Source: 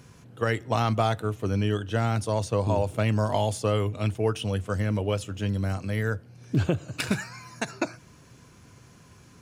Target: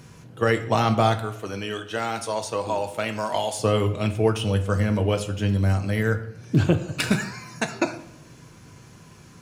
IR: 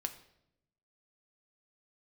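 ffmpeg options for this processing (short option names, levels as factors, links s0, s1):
-filter_complex "[0:a]asettb=1/sr,asplit=3[s0][s1][s2];[s0]atrim=end=1.194[s3];[s1]atrim=start=1.19:end=3.59,asetpts=PTS-STARTPTS,afade=t=in:d=0.004:c=qsin,afade=t=out:st=2.396:d=0.004:c=qsin,highpass=f=750:p=1[s4];[s2]atrim=start=3.586[s5];[s3][s4]acrossfade=d=0.004:c1=hsin:c2=qsin[s6];[s6][s5]acrossfade=d=0.004:c1=qsin:c2=hsin[s7];[1:a]atrim=start_sample=2205[s8];[s7][s8]afir=irnorm=-1:irlink=0,volume=1.78"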